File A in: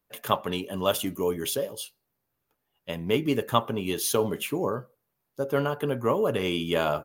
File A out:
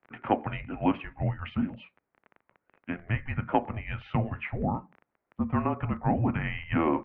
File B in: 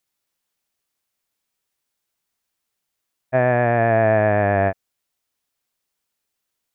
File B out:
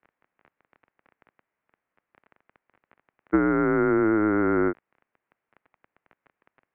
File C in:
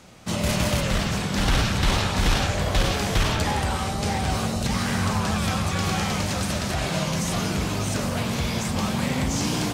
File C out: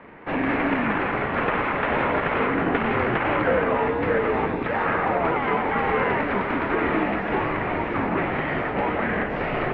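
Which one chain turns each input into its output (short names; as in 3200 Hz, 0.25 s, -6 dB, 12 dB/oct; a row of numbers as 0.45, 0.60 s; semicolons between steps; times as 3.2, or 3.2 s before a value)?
compressor 10:1, threshold -20 dBFS; crackle 17/s -34 dBFS; mistuned SSB -320 Hz 470–2500 Hz; normalise peaks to -9 dBFS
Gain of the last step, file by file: +3.0, +4.5, +9.0 dB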